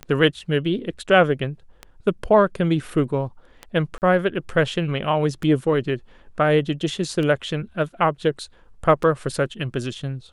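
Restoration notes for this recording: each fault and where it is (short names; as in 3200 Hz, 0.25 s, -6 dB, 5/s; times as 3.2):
tick 33 1/3 rpm -17 dBFS
3.98–4.02 gap 39 ms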